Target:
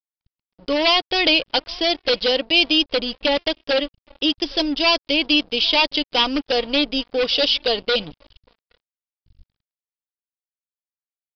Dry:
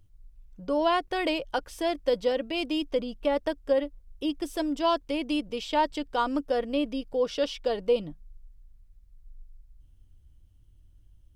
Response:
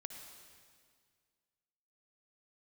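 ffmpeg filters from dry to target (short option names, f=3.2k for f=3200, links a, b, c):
-filter_complex "[0:a]acontrast=40,aeval=exprs='0.168*(abs(mod(val(0)/0.168+3,4)-2)-1)':c=same,asplit=2[a][b];[b]adelay=816.3,volume=-23dB,highshelf=f=4k:g=-18.4[c];[a][c]amix=inputs=2:normalize=0,aexciter=amount=2.8:drive=9.6:freq=2.4k,aeval=exprs='sgn(val(0))*max(abs(val(0))-0.015,0)':c=same,aresample=11025,aresample=44100,volume=2dB"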